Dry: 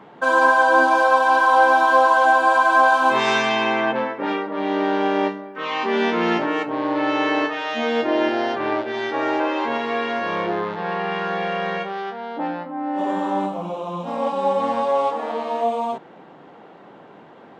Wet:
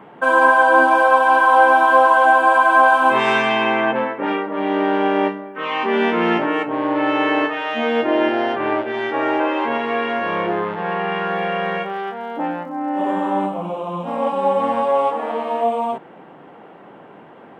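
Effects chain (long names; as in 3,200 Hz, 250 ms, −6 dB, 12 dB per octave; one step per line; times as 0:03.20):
flat-topped bell 5,100 Hz −10.5 dB 1.1 octaves
0:11.29–0:13.12: surface crackle 170 per second −49 dBFS
level +2.5 dB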